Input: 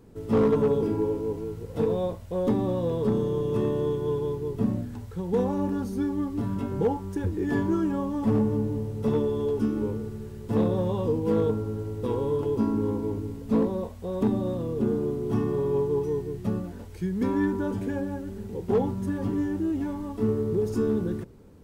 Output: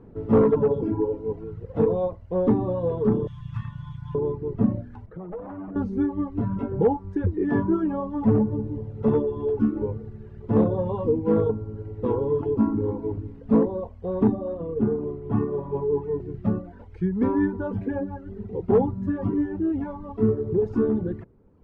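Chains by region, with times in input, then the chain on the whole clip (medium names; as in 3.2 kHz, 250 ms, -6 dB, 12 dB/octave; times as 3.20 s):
3.27–4.15 s: Chebyshev band-stop 120–1500 Hz + treble shelf 3.3 kHz +10.5 dB
5.06–5.76 s: comb filter that takes the minimum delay 6.3 ms + low-pass 2.2 kHz 6 dB/octave + compression 10:1, threshold -34 dBFS
14.32–16.20 s: Gaussian low-pass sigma 1.8 samples + hum notches 60/120/180/240/300/360/420/480 Hz
whole clip: reverb removal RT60 1.4 s; low-pass 1.5 kHz 12 dB/octave; trim +5 dB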